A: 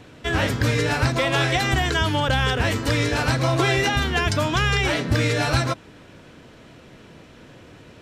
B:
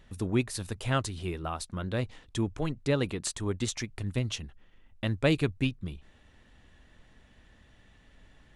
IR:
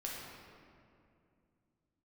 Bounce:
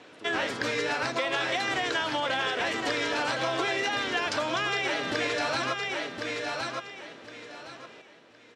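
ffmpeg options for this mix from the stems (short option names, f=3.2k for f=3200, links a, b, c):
-filter_complex "[0:a]volume=-1.5dB,asplit=2[a][b];[b]volume=-7dB[c];[1:a]volume=-10.5dB[d];[c]aecho=0:1:1064|2128|3192|4256:1|0.25|0.0625|0.0156[e];[a][d][e]amix=inputs=3:normalize=0,highpass=370,lowpass=6.4k,acompressor=threshold=-25dB:ratio=6"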